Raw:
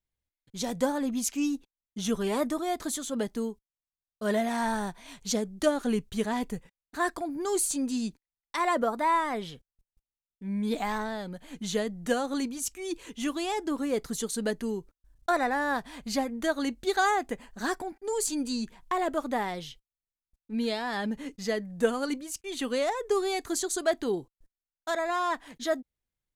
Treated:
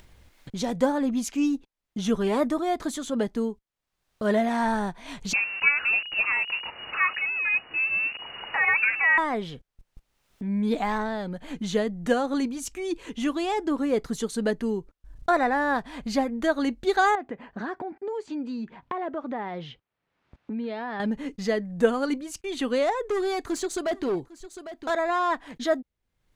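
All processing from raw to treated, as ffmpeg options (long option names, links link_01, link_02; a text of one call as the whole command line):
ffmpeg -i in.wav -filter_complex "[0:a]asettb=1/sr,asplit=3[link_01][link_02][link_03];[link_01]atrim=end=5.334[link_04];[link_02]atrim=start=5.33:end=9.18,asetpts=PTS-STARTPTS,afade=type=in:duration=0.004:curve=qsin,afade=type=out:start_time=3.846:duration=0.004:curve=qsin,aeval=exprs='val(0)+0.5*0.0224*sgn(val(0))':channel_layout=same,lowpass=frequency=2500:width_type=q:width=0.5098,lowpass=frequency=2500:width_type=q:width=0.6013,lowpass=frequency=2500:width_type=q:width=0.9,lowpass=frequency=2500:width_type=q:width=2.563,afreqshift=-2900[link_05];[link_03]atrim=start=9.176[link_06];[link_04][link_05]acrossfade=duration=0.004:curve1=hsin:curve2=qsin[link_07];[link_07][link_06]acrossfade=duration=0.004:curve1=qsin:curve2=hsin,asettb=1/sr,asplit=3[link_08][link_09][link_10];[link_08]atrim=end=17.154[link_11];[link_09]atrim=start=17.15:end=21,asetpts=PTS-STARTPTS,afade=type=in:duration=0.004:curve=qsin,afade=type=out:start_time=3.846:duration=0.004:curve=qsin,acompressor=threshold=-38dB:ratio=2:attack=3.2:release=140:knee=1:detection=peak,highpass=110,lowpass=2600[link_12];[link_10]atrim=start=20.996[link_13];[link_11][link_12]acrossfade=duration=0.004:curve1=hsin:curve2=qsin[link_14];[link_14][link_13]acrossfade=duration=0.004:curve1=qsin:curve2=hsin,asettb=1/sr,asplit=3[link_15][link_16][link_17];[link_15]atrim=end=23.094[link_18];[link_16]atrim=start=23.09:end=24.9,asetpts=PTS-STARTPTS,afade=type=in:duration=0.004:curve=qsin,afade=type=out:start_time=1.806:duration=0.004:curve=qsin,volume=27dB,asoftclip=hard,volume=-27dB,aecho=1:1:803:0.075,atrim=end_sample=79821[link_19];[link_17]atrim=start=24.896[link_20];[link_18][link_19]acrossfade=duration=0.004:curve1=hsin:curve2=qsin[link_21];[link_21][link_20]acrossfade=duration=0.004:curve1=qsin:curve2=hsin,lowpass=frequency=2700:poles=1,acompressor=mode=upward:threshold=-33dB:ratio=2.5,volume=4.5dB" out.wav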